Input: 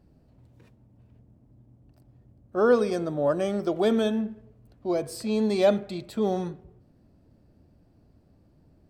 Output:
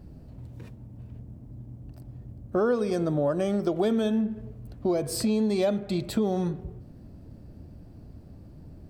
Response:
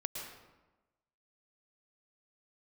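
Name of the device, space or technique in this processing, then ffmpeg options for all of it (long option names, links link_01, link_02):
ASMR close-microphone chain: -af "lowshelf=frequency=250:gain=7.5,acompressor=threshold=-31dB:ratio=5,highshelf=frequency=9000:gain=3.5,volume=7.5dB"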